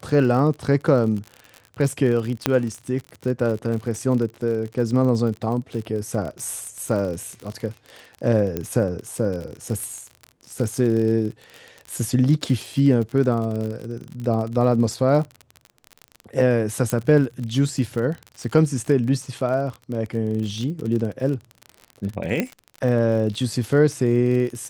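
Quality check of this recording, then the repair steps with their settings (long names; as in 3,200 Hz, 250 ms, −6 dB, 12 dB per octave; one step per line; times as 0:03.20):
surface crackle 40 per second −28 dBFS
0:02.46: click −3 dBFS
0:08.57: click −12 dBFS
0:16.90: click −9 dBFS
0:22.40: click −9 dBFS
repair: click removal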